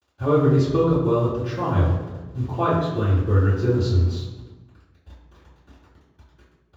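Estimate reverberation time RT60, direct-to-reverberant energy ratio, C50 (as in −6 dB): 1.2 s, −20.5 dB, 1.0 dB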